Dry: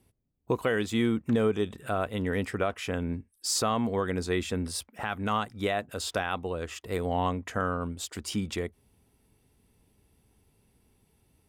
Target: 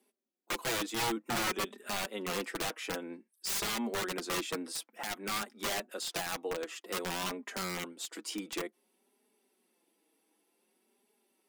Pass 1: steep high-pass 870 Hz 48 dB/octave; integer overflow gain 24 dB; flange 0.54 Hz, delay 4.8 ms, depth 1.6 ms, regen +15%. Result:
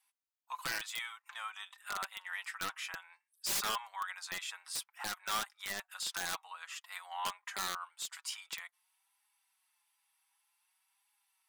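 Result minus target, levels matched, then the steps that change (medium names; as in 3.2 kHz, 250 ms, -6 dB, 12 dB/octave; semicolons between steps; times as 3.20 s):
250 Hz band -15.5 dB
change: steep high-pass 240 Hz 48 dB/octave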